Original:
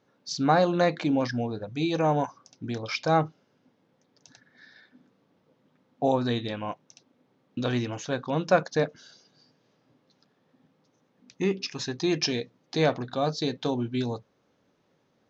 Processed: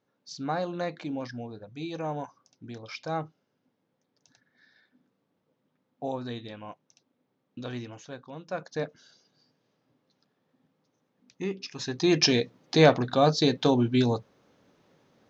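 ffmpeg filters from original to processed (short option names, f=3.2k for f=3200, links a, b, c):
-af "volume=13dB,afade=t=out:st=7.81:d=0.65:silence=0.421697,afade=t=in:st=8.46:d=0.37:silence=0.298538,afade=t=in:st=11.7:d=0.59:silence=0.266073"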